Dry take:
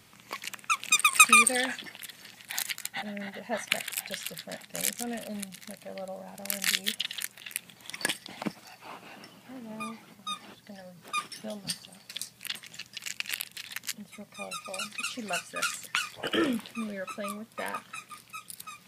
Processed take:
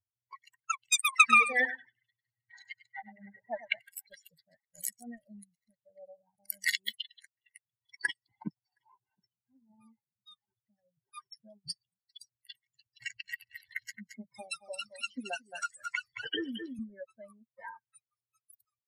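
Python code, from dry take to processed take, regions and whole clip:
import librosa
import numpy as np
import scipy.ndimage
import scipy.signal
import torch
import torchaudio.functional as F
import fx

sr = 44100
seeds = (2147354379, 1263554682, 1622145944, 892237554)

y = fx.chain(x, sr, fx.air_absorb(metres=100.0),
    fx.echo_feedback(ms=100, feedback_pct=32, wet_db=-5), at=(1.1, 3.81))
y = fx.chain(y, sr, fx.bessel_lowpass(hz=8200.0, order=2),
    fx.echo_single(ms=718, db=-16.0), at=(7.13, 9.64))
y = fx.chain(y, sr, fx.echo_single(ms=220, db=-5.0),
    fx.band_squash(depth_pct=100), at=(13.0, 16.79))
y = fx.bin_expand(y, sr, power=3.0)
y = fx.peak_eq(y, sr, hz=1900.0, db=11.0, octaves=0.43)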